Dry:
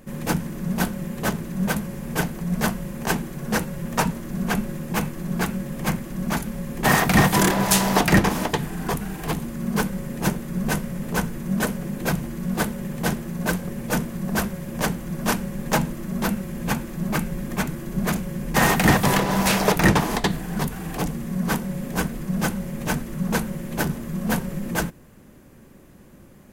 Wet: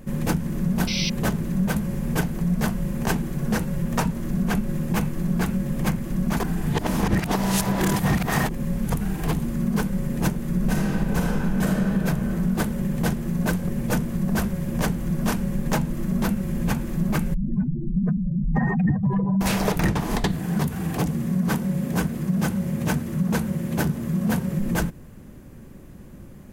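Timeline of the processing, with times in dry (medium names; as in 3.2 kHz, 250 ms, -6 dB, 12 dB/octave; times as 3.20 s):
0.87–1.10 s: painted sound noise 2–6.1 kHz -25 dBFS
6.40–8.92 s: reverse
10.55–11.93 s: reverb throw, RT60 2.4 s, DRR -3.5 dB
17.34–19.41 s: spectral contrast enhancement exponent 2.9
20.34–24.59 s: high-pass 65 Hz 24 dB/octave
whole clip: bass shelf 230 Hz +9.5 dB; compression 5:1, threshold -19 dBFS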